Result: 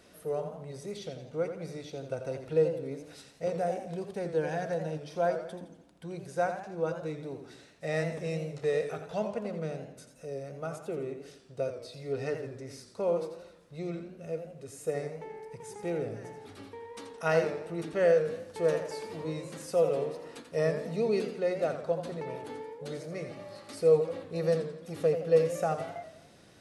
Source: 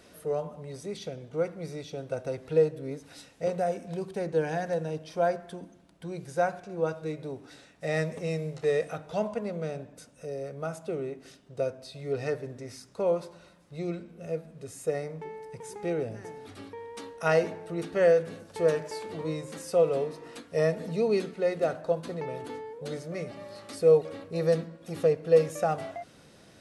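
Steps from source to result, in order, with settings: warbling echo 85 ms, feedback 47%, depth 124 cents, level -9 dB; gain -3 dB

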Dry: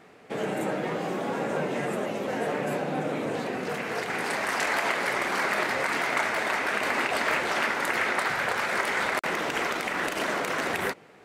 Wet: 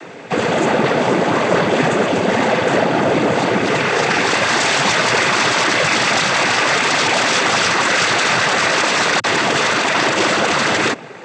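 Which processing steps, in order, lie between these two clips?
sine folder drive 15 dB, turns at -11.5 dBFS; noise vocoder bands 16

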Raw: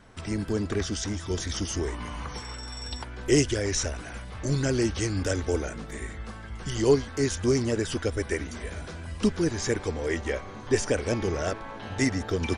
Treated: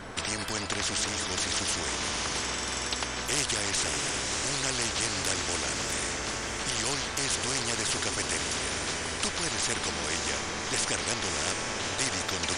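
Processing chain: diffused feedback echo 0.613 s, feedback 54%, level -11 dB; spectral compressor 4:1; gain -2.5 dB

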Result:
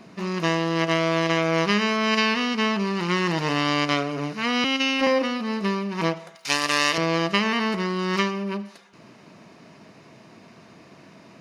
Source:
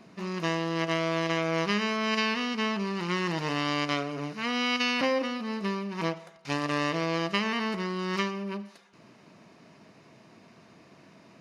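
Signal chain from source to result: 4.64–5.07 robotiser 267 Hz; 6.35–6.98 tilt +4 dB/oct; gain +6 dB

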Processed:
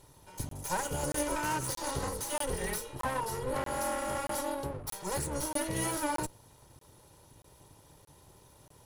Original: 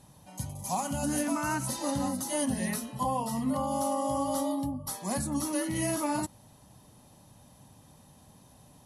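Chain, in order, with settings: minimum comb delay 2.1 ms; crackling interface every 0.63 s, samples 1024, zero, from 0.49

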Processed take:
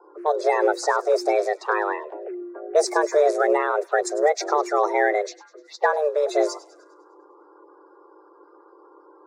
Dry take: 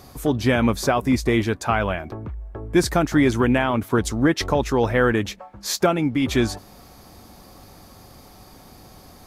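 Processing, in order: bin magnitudes rounded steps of 30 dB; envelope phaser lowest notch 310 Hz, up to 2700 Hz, full sweep at -21 dBFS; low-pass opened by the level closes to 610 Hz, open at -18.5 dBFS; frequency shift +300 Hz; on a send: thin delay 0.101 s, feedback 51%, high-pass 3100 Hz, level -17 dB

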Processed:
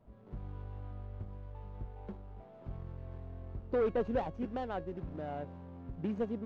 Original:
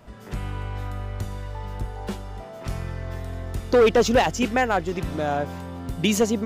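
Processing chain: median filter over 25 samples; tape spacing loss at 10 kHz 29 dB; resonator 550 Hz, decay 0.59 s, mix 70%; gain -2.5 dB

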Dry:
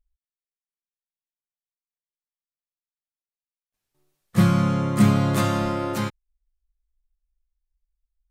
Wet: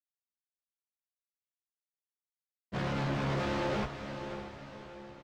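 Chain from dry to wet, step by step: bell 670 Hz +12 dB 1.2 oct; tremolo 5.9 Hz, depth 70%; Schmitt trigger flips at -33 dBFS; plain phase-vocoder stretch 0.63×; soft clip -36 dBFS, distortion -7 dB; air absorption 160 m; doubler 15 ms -2 dB; diffused feedback echo 0.556 s, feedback 49%, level -8.5 dB; gain +4 dB

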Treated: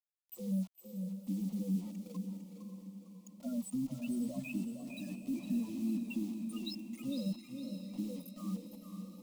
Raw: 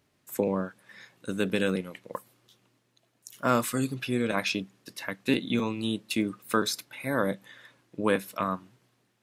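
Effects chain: reverb removal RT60 0.5 s; loudest bins only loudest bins 4; limiter -27.5 dBFS, peak gain reduction 10 dB; passive tone stack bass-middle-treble 10-0-1; bit-crush 12-bit; fixed phaser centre 420 Hz, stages 6; diffused feedback echo 0.58 s, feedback 53%, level -9 dB; warbling echo 0.456 s, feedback 35%, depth 76 cents, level -8 dB; gain +18 dB

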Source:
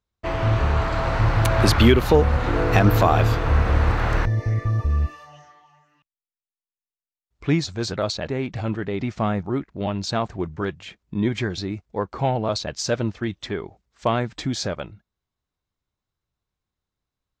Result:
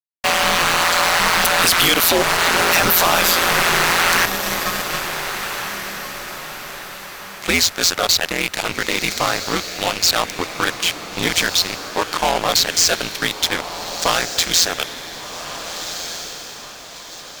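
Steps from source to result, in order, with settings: differentiator; in parallel at -1 dB: compressor, threshold -43 dBFS, peak gain reduction 19 dB; on the sum: fuzz box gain 42 dB, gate -45 dBFS; ring modulator 86 Hz; on a send: diffused feedback echo 1.481 s, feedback 43%, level -9.5 dB; on the sum: gain +4 dB

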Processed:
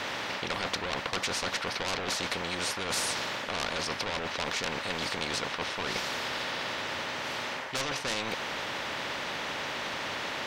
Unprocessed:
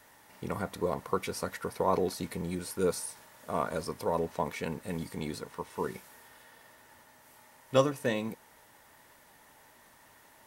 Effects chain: air absorption 210 m; overdrive pedal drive 26 dB, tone 7500 Hz, clips at -9.5 dBFS; reverse; compressor, threshold -29 dBFS, peak gain reduction 13.5 dB; reverse; bell 550 Hz +11.5 dB 0.25 oct; spectral compressor 4:1

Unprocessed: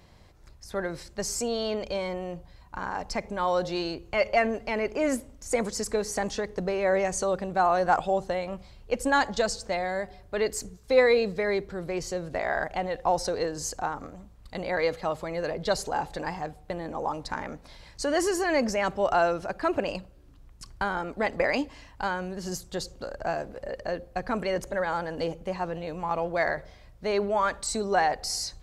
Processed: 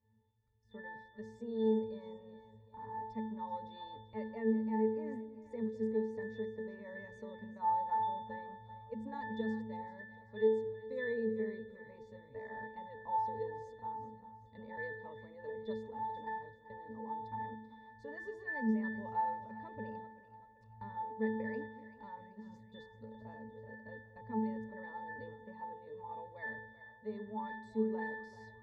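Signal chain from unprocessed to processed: octave resonator A, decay 0.73 s; spectral noise reduction 9 dB; split-band echo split 550 Hz, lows 0.203 s, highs 0.386 s, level -14 dB; gain +8 dB

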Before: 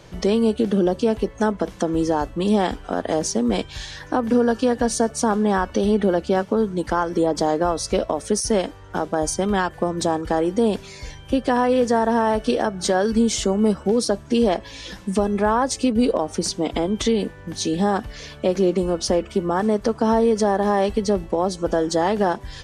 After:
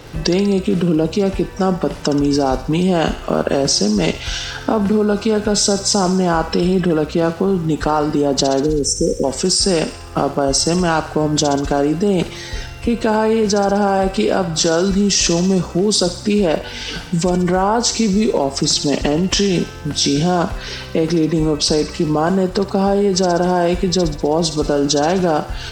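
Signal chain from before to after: dynamic EQ 6700 Hz, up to +7 dB, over -44 dBFS, Q 1.7; spectral delete 7.61–8.13, 620–6000 Hz; in parallel at +0.5 dB: negative-ratio compressor -24 dBFS; on the sum: crackle 400/s -36 dBFS; varispeed -12%; on a send: thinning echo 64 ms, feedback 66%, high-pass 810 Hz, level -10.5 dB

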